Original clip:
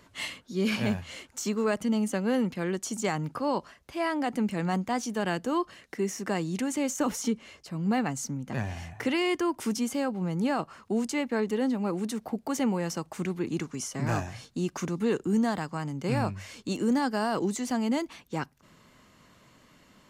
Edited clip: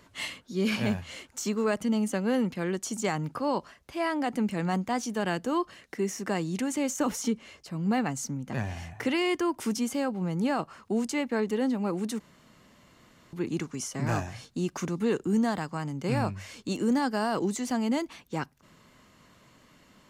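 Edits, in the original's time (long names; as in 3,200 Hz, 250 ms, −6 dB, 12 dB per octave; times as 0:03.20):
0:12.20–0:13.33: fill with room tone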